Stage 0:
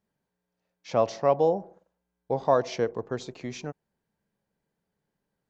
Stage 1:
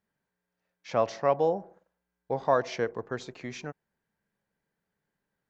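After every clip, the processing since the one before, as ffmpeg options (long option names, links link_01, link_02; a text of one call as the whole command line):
ffmpeg -i in.wav -af "equalizer=frequency=1700:width_type=o:width=1.2:gain=7.5,volume=-3.5dB" out.wav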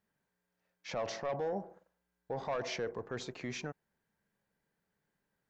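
ffmpeg -i in.wav -af "asoftclip=type=tanh:threshold=-19.5dB,alimiter=level_in=5dB:limit=-24dB:level=0:latency=1:release=15,volume=-5dB" out.wav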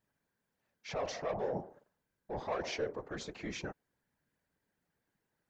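ffmpeg -i in.wav -af "afftfilt=real='hypot(re,im)*cos(2*PI*random(0))':imag='hypot(re,im)*sin(2*PI*random(1))':win_size=512:overlap=0.75,volume=5.5dB" out.wav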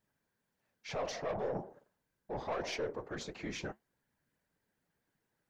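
ffmpeg -i in.wav -af "flanger=delay=4.6:depth=5.2:regen=-71:speed=1.8:shape=triangular,aeval=exprs='(tanh(44.7*val(0)+0.25)-tanh(0.25))/44.7':channel_layout=same,volume=5.5dB" out.wav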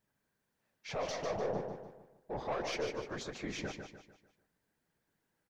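ffmpeg -i in.wav -af "aecho=1:1:149|298|447|596|745:0.473|0.194|0.0795|0.0326|0.0134" out.wav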